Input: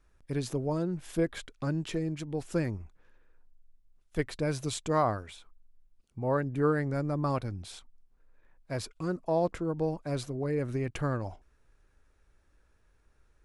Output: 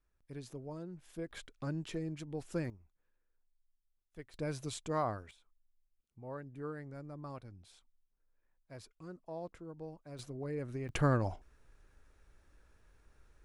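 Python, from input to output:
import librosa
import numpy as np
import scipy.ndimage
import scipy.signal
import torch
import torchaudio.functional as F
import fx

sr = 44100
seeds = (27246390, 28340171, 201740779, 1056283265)

y = fx.gain(x, sr, db=fx.steps((0.0, -14.0), (1.31, -7.0), (2.7, -19.0), (4.34, -7.5), (5.31, -16.0), (10.19, -8.5), (10.89, 2.0)))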